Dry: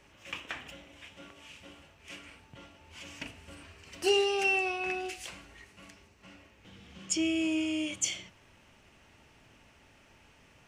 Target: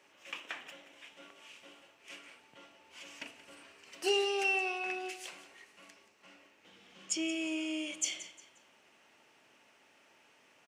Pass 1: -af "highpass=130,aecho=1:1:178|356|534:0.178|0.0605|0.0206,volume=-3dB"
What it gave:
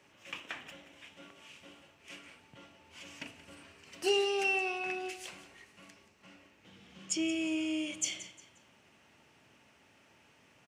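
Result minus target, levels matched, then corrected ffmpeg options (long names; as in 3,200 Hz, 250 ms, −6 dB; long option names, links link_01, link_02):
125 Hz band +10.5 dB
-af "highpass=330,aecho=1:1:178|356|534:0.178|0.0605|0.0206,volume=-3dB"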